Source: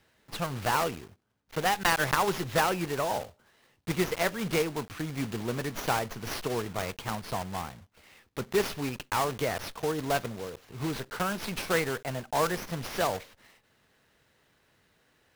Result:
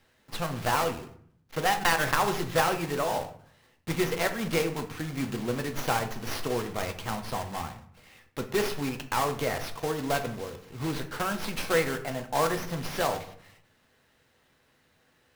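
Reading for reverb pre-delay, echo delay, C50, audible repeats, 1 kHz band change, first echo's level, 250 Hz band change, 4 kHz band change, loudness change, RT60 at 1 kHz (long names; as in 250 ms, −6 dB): 4 ms, no echo audible, 12.0 dB, no echo audible, +1.0 dB, no echo audible, +1.0 dB, +1.0 dB, +1.0 dB, 0.60 s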